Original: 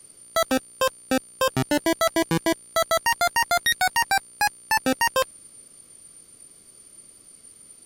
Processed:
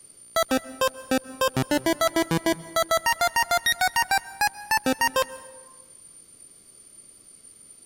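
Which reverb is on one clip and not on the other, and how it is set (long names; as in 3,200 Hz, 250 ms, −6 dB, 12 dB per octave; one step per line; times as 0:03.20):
dense smooth reverb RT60 1.2 s, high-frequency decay 0.5×, pre-delay 120 ms, DRR 17.5 dB
level −1 dB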